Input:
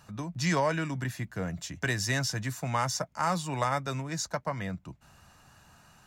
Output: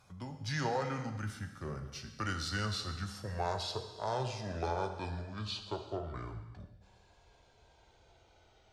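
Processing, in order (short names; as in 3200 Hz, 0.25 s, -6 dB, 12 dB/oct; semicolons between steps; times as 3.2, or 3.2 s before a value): speed glide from 88% -> 51%; non-linear reverb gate 0.44 s falling, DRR 6 dB; gain -7.5 dB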